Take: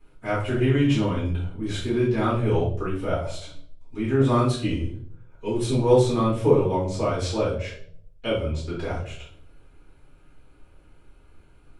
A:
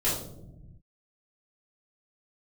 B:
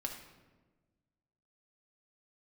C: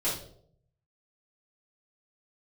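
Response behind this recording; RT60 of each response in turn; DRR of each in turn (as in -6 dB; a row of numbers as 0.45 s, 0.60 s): C; 0.95 s, 1.3 s, 0.65 s; -11.0 dB, 0.0 dB, -9.5 dB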